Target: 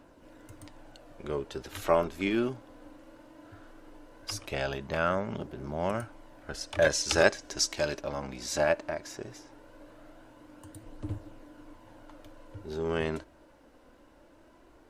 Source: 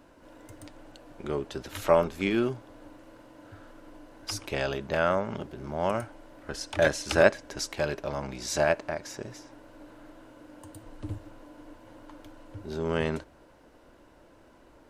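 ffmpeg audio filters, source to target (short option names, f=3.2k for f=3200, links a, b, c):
-filter_complex "[0:a]asettb=1/sr,asplit=3[a][b][c];[a]atrim=end=6.904[d];[b]atrim=start=6.9:end=8.01,asetpts=PTS-STARTPTS,afade=t=in:d=0.004:c=qsin,afade=t=out:st=1.106:d=0.004:c=qsin,equalizer=f=6k:t=o:w=1.3:g=9.5[e];[c]atrim=start=8.006[f];[d][e]acrossfade=d=0.004:c1=hsin:c2=qsin[g];[g][f]acrossfade=d=0.004:c1=qsin:c2=hsin,aphaser=in_gain=1:out_gain=1:delay=4:decay=0.26:speed=0.18:type=triangular,volume=-2.5dB"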